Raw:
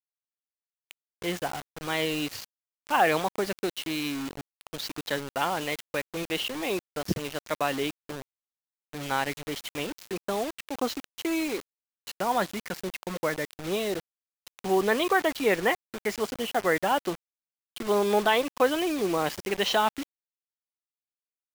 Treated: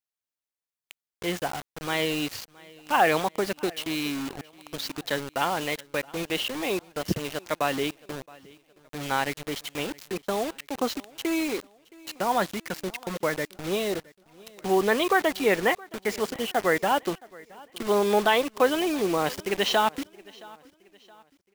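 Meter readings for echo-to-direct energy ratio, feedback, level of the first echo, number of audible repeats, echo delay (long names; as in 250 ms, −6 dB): −22.0 dB, 41%, −23.0 dB, 2, 670 ms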